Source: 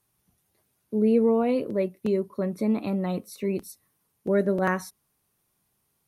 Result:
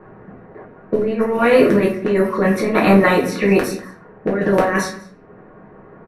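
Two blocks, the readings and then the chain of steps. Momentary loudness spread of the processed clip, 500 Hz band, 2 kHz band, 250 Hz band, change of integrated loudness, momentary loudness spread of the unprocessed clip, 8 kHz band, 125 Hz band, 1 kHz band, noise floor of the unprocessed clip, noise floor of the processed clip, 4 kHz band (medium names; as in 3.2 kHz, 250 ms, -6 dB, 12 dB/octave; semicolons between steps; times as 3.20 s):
11 LU, +9.5 dB, +16.0 dB, +8.0 dB, +9.5 dB, 11 LU, +12.0 dB, +10.0 dB, +13.5 dB, -74 dBFS, -44 dBFS, +16.0 dB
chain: spectral levelling over time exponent 0.6; reverb removal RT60 0.76 s; peaking EQ 1.8 kHz +12 dB 1.2 oct; compressor with a negative ratio -24 dBFS, ratio -0.5; level-controlled noise filter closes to 790 Hz, open at -22.5 dBFS; delay 197 ms -18.5 dB; simulated room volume 45 m³, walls mixed, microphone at 0.91 m; tape noise reduction on one side only decoder only; trim +5.5 dB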